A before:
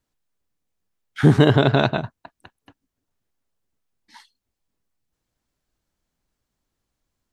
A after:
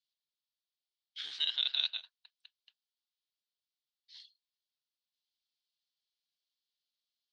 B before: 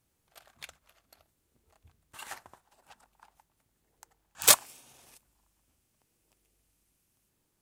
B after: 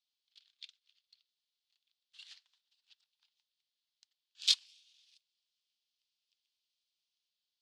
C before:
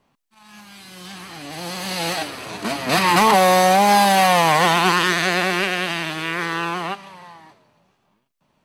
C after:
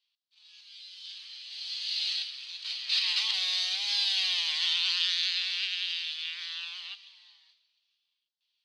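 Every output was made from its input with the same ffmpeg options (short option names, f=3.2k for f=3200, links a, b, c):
-af "asuperpass=centerf=3900:order=4:qfactor=2.1"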